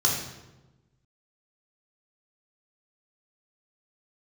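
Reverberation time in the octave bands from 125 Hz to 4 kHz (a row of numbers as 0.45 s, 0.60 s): 1.6 s, 1.4 s, 1.2 s, 1.0 s, 0.85 s, 0.75 s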